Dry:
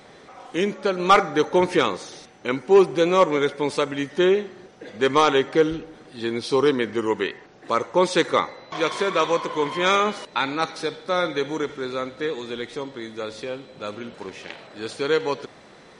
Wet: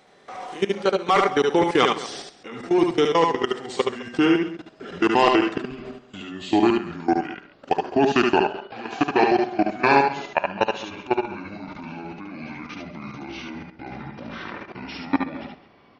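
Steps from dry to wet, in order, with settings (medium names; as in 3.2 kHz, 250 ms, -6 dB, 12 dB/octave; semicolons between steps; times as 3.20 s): pitch bend over the whole clip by -10 st starting unshifted; bass shelf 190 Hz -6 dB; in parallel at 0 dB: compression 12:1, threshold -31 dBFS, peak gain reduction 20.5 dB; on the sum: small resonant body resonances 740/2800 Hz, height 6 dB, ringing for 75 ms; level held to a coarse grid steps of 20 dB; on a send: multi-tap echo 72/77/132/210 ms -4.5/-10/-18/-17.5 dB; on the sum: trim +3.5 dB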